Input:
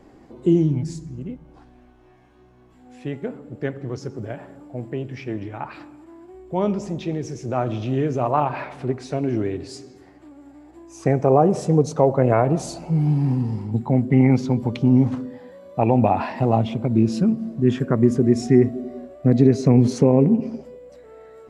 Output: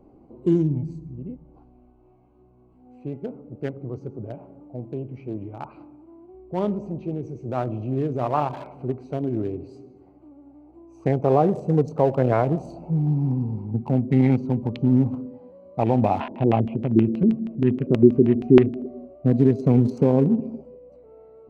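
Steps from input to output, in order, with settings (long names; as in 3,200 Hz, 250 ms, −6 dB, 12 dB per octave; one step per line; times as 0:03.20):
adaptive Wiener filter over 25 samples
0:16.20–0:18.86: auto-filter low-pass square 6.3 Hz 370–2,700 Hz
level −2.5 dB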